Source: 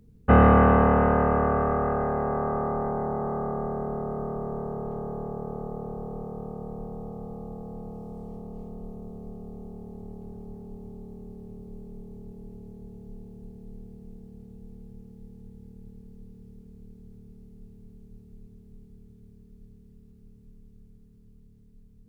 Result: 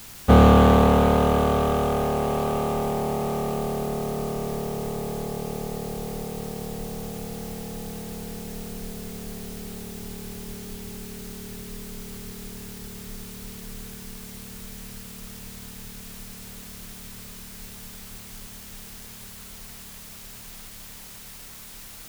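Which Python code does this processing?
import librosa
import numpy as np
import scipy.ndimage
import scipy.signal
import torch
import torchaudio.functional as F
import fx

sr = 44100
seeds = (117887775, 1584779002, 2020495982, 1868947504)

p1 = scipy.ndimage.median_filter(x, 25, mode='constant')
p2 = fx.quant_dither(p1, sr, seeds[0], bits=6, dither='triangular')
y = p1 + (p2 * librosa.db_to_amplitude(-7.0))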